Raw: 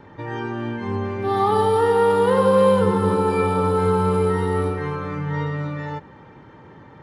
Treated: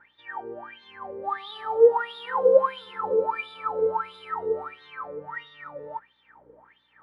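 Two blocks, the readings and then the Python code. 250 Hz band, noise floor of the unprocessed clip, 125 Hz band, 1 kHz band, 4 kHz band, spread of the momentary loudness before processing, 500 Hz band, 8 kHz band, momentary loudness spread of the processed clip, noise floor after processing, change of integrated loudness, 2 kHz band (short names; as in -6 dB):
-23.5 dB, -46 dBFS, under -30 dB, -7.0 dB, -5.0 dB, 12 LU, -4.5 dB, under -25 dB, 20 LU, -65 dBFS, -5.0 dB, -5.5 dB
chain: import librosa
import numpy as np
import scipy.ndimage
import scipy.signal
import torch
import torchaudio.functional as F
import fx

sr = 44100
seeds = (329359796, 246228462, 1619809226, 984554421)

y = fx.add_hum(x, sr, base_hz=60, snr_db=17)
y = fx.wah_lfo(y, sr, hz=1.5, low_hz=460.0, high_hz=3700.0, q=14.0)
y = F.gain(torch.from_numpy(y), 7.5).numpy()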